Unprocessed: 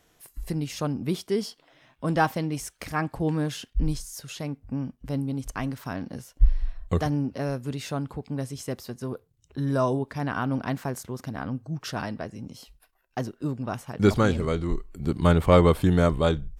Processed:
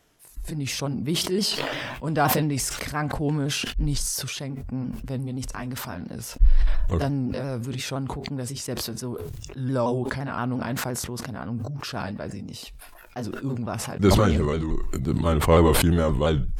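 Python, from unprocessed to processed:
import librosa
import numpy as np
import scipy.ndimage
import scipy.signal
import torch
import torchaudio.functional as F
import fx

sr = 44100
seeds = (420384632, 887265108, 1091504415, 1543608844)

y = fx.pitch_ramps(x, sr, semitones=-2.0, every_ms=173)
y = fx.sustainer(y, sr, db_per_s=21.0)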